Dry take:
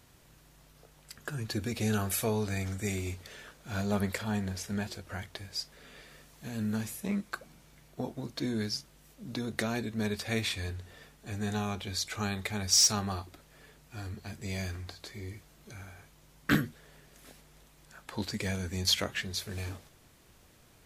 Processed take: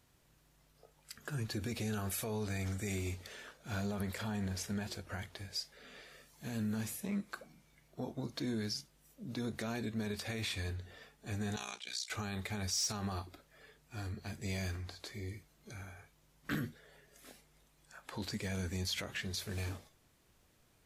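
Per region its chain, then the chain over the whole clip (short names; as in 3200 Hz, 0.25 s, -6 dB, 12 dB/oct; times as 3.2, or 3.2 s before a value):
11.56–12.1 gate -40 dBFS, range -8 dB + weighting filter ITU-R 468 + AM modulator 61 Hz, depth 80%
whole clip: spectral noise reduction 8 dB; limiter -27.5 dBFS; gain -1.5 dB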